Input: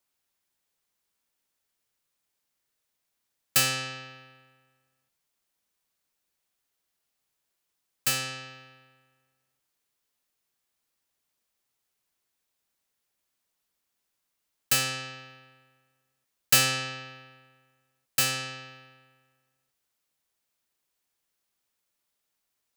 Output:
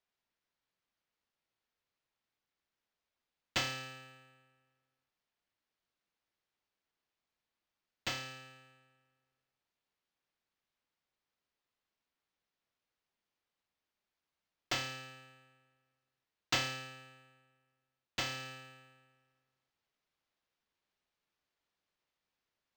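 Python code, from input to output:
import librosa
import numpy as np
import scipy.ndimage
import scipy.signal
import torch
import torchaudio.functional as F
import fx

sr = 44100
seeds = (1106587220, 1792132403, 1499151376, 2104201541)

y = fx.rider(x, sr, range_db=10, speed_s=0.5)
y = np.interp(np.arange(len(y)), np.arange(len(y))[::4], y[::4])
y = y * 10.0 ** (-7.0 / 20.0)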